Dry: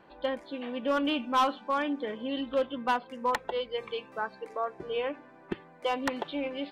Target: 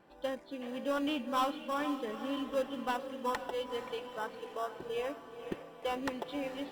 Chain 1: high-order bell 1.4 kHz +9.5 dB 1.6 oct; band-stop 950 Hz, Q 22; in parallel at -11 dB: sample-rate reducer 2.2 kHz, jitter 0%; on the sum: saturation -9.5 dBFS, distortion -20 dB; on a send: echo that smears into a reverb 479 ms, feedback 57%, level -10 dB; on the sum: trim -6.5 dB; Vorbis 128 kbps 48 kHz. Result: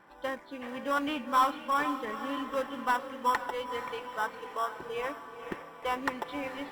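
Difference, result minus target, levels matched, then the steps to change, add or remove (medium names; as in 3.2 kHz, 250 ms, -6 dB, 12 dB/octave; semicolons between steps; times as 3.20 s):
1 kHz band +3.0 dB
remove: high-order bell 1.4 kHz +9.5 dB 1.6 oct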